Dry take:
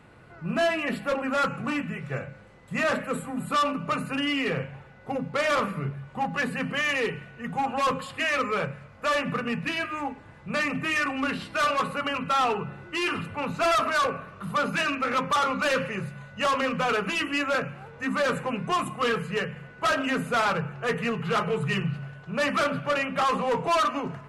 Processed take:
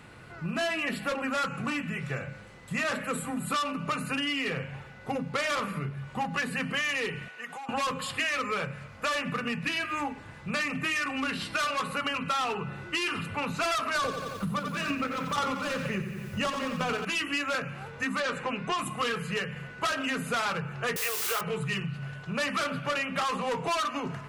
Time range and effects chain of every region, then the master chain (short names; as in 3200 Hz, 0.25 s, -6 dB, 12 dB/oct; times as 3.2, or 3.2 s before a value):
7.28–7.69 HPF 580 Hz + compressor 10:1, threshold -39 dBFS
13.95–17.05 low shelf 500 Hz +11 dB + chopper 2.1 Hz, depth 65%, duty 35% + lo-fi delay 89 ms, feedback 55%, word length 9-bit, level -8 dB
18.2–18.78 LPF 5700 Hz + bell 140 Hz -6.5 dB 1.2 oct
20.96–21.41 elliptic high-pass 380 Hz + requantised 6-bit, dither triangular
whole clip: EQ curve 110 Hz 0 dB, 620 Hz -6 dB, 5200 Hz +2 dB; compressor, threshold -34 dBFS; low shelf 200 Hz -5.5 dB; gain +7 dB